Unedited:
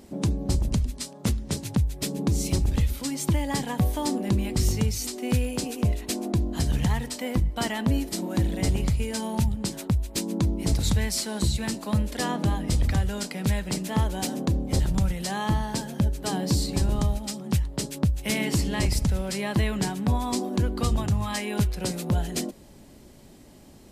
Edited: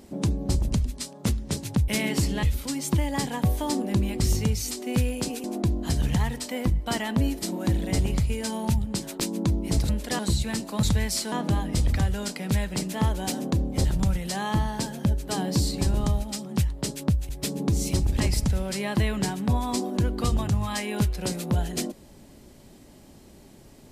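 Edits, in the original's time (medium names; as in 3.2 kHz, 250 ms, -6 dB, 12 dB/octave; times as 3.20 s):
1.88–2.79 s: swap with 18.24–18.79 s
5.80–6.14 s: delete
9.90–10.15 s: delete
10.84–11.33 s: swap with 11.97–12.27 s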